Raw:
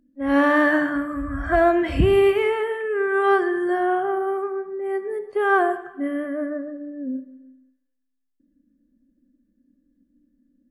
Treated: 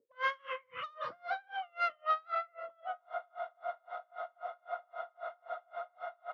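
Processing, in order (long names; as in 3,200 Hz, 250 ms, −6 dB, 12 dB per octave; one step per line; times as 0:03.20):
gliding playback speed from 184% → 154%
leveller curve on the samples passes 1
in parallel at +2.5 dB: downward compressor 6 to 1, threshold −24 dBFS, peak gain reduction 11.5 dB
on the sum: envelope filter 250–1,400 Hz, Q 3.5, up, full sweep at −17.5 dBFS
soft clipping −18 dBFS, distortion −13 dB
band-pass filter 130–3,500 Hz
double-tracking delay 35 ms −11.5 dB
feedback echo with a band-pass in the loop 791 ms, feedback 75%, band-pass 400 Hz, level −13 dB
frozen spectrum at 0:03.01, 3.34 s
tremolo with a sine in dB 3.8 Hz, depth 35 dB
level −4.5 dB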